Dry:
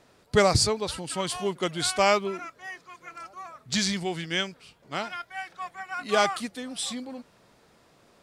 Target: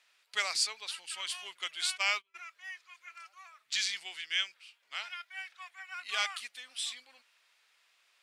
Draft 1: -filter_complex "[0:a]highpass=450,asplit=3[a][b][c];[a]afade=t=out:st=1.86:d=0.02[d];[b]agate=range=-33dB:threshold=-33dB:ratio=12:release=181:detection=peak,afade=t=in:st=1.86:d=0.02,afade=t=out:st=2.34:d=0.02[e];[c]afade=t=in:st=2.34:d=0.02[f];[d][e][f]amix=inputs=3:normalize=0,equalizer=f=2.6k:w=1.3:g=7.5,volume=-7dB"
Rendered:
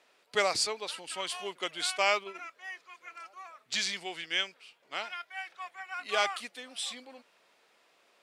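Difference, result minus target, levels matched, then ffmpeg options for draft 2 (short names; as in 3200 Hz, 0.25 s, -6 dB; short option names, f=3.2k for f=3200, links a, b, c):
500 Hz band +15.0 dB
-filter_complex "[0:a]highpass=1.6k,asplit=3[a][b][c];[a]afade=t=out:st=1.86:d=0.02[d];[b]agate=range=-33dB:threshold=-33dB:ratio=12:release=181:detection=peak,afade=t=in:st=1.86:d=0.02,afade=t=out:st=2.34:d=0.02[e];[c]afade=t=in:st=2.34:d=0.02[f];[d][e][f]amix=inputs=3:normalize=0,equalizer=f=2.6k:w=1.3:g=7.5,volume=-7dB"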